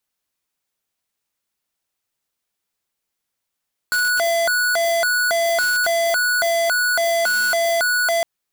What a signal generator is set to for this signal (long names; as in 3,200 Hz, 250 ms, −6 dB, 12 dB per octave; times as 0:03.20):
siren hi-lo 674–1,470 Hz 1.8 per second square −18.5 dBFS 4.31 s